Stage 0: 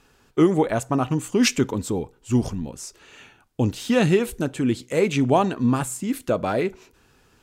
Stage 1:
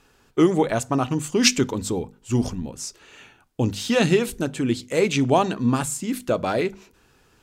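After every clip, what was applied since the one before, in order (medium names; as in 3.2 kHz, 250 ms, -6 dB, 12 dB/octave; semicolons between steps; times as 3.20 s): hum notches 50/100/150/200/250 Hz; dynamic bell 4.9 kHz, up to +6 dB, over -43 dBFS, Q 0.85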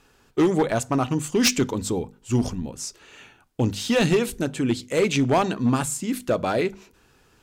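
overload inside the chain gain 14 dB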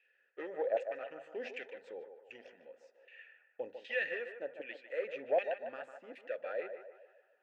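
LFO band-pass saw down 1.3 Hz 680–2300 Hz; vowel filter e; band-passed feedback delay 150 ms, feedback 53%, band-pass 850 Hz, level -6.5 dB; trim +5 dB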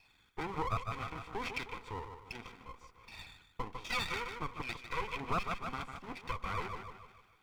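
comb filter that takes the minimum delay 0.87 ms; compression 2:1, threshold -45 dBFS, peak gain reduction 8.5 dB; trim +9 dB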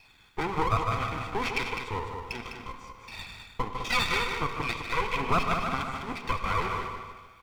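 delay 205 ms -7 dB; on a send at -10 dB: reverberation, pre-delay 3 ms; on the sum: trim +8.5 dB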